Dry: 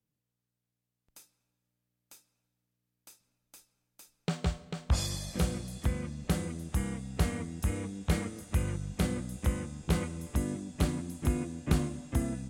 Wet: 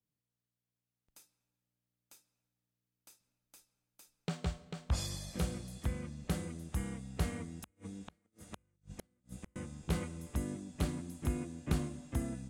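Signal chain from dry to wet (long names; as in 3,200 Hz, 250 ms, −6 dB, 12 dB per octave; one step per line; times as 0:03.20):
0:07.46–0:09.56: gate with flip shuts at −26 dBFS, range −39 dB
level −5.5 dB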